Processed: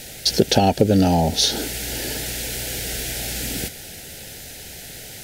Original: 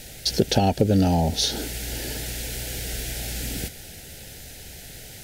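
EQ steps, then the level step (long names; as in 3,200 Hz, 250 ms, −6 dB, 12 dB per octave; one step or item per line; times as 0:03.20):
low-shelf EQ 110 Hz −8.5 dB
+5.0 dB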